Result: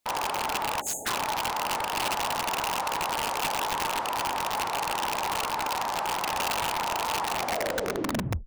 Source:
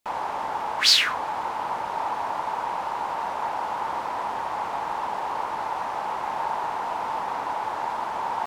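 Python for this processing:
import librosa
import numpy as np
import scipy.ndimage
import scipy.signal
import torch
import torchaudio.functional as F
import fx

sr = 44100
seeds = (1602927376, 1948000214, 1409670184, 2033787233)

y = fx.tape_stop_end(x, sr, length_s=1.18)
y = fx.spec_erase(y, sr, start_s=0.81, length_s=0.25, low_hz=900.0, high_hz=6300.0)
y = (np.mod(10.0 ** (22.0 / 20.0) * y + 1.0, 2.0) - 1.0) / 10.0 ** (22.0 / 20.0)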